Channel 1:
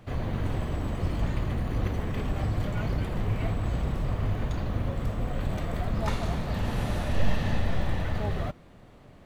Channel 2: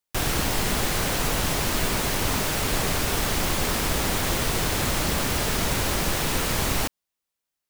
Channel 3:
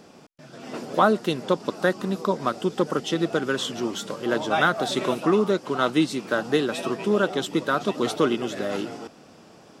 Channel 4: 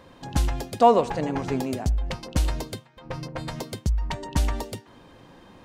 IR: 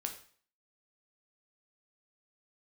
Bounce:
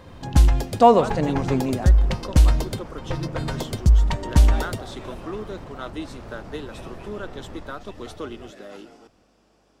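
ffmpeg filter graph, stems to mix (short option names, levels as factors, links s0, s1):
-filter_complex "[0:a]alimiter=limit=0.0944:level=0:latency=1,volume=0.178[s0];[1:a]lowpass=1000,asoftclip=type=tanh:threshold=0.0562,adelay=850,volume=0.316[s1];[2:a]highpass=180,aeval=exprs='val(0)+0.00158*(sin(2*PI*50*n/s)+sin(2*PI*2*50*n/s)/2+sin(2*PI*3*50*n/s)/3+sin(2*PI*4*50*n/s)/4+sin(2*PI*5*50*n/s)/5)':c=same,volume=0.251[s2];[3:a]lowshelf=f=150:g=8,volume=1.33[s3];[s0][s1][s2][s3]amix=inputs=4:normalize=0"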